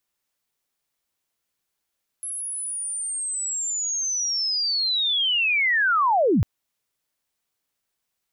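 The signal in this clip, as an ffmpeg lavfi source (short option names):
-f lavfi -i "aevalsrc='pow(10,(-28.5+13*t/4.2)/20)*sin(2*PI*(11000*t-10933*t*t/(2*4.2)))':d=4.2:s=44100"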